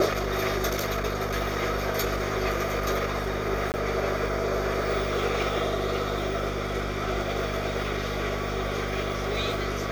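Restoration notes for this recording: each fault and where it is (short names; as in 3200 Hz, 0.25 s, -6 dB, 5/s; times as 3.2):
crackle 12/s
hum 50 Hz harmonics 5 -33 dBFS
3.72–3.74 gap 19 ms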